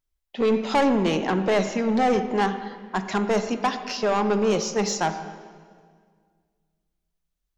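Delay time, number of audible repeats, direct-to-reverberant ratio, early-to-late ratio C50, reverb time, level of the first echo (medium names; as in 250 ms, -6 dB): no echo, no echo, 9.5 dB, 10.0 dB, 1.9 s, no echo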